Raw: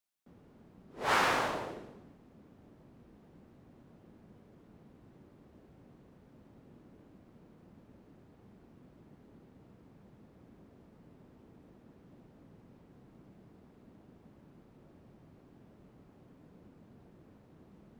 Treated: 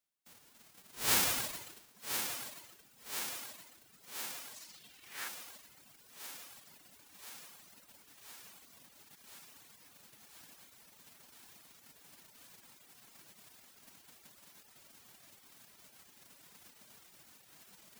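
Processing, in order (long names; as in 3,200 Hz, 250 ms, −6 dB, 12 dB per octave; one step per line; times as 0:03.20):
spectral envelope flattened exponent 0.1
feedback echo with a high-pass in the loop 1,025 ms, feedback 72%, high-pass 150 Hz, level −7.5 dB
reverb reduction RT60 1.1 s
0:04.54–0:05.27: parametric band 6,900 Hz → 1,500 Hz +10.5 dB 1.2 octaves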